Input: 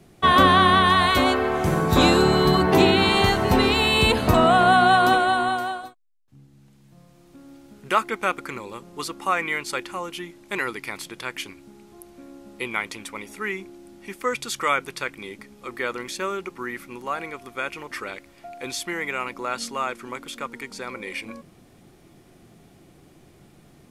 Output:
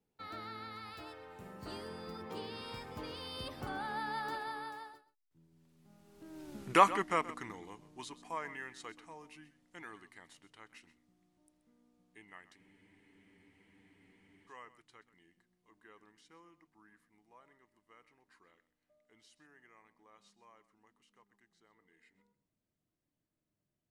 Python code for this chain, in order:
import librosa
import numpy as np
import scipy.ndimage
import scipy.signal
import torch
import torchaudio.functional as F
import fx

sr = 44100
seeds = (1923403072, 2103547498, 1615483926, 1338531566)

y = fx.doppler_pass(x, sr, speed_mps=53, closest_m=11.0, pass_at_s=6.58)
y = y + 10.0 ** (-16.0 / 20.0) * np.pad(y, (int(128 * sr / 1000.0), 0))[:len(y)]
y = fx.spec_freeze(y, sr, seeds[0], at_s=12.58, hold_s=1.9)